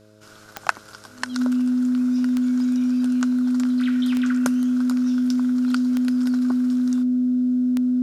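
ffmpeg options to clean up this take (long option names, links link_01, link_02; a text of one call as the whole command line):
ffmpeg -i in.wav -af "adeclick=threshold=4,bandreject=frequency=106.3:width_type=h:width=4,bandreject=frequency=212.6:width_type=h:width=4,bandreject=frequency=318.9:width_type=h:width=4,bandreject=frequency=425.2:width_type=h:width=4,bandreject=frequency=531.5:width_type=h:width=4,bandreject=frequency=637.8:width_type=h:width=4,bandreject=frequency=250:width=30" out.wav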